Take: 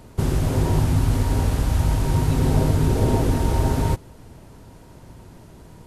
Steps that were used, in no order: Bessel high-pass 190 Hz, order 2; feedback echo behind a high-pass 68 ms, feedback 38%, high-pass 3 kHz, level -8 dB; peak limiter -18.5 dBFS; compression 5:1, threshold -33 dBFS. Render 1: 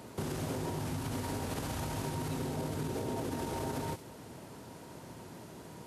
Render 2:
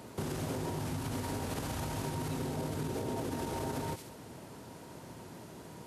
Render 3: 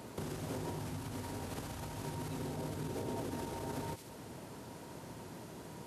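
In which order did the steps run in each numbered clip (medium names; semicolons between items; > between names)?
peak limiter > Bessel high-pass > compression > feedback echo behind a high-pass; feedback echo behind a high-pass > peak limiter > Bessel high-pass > compression; feedback echo behind a high-pass > peak limiter > compression > Bessel high-pass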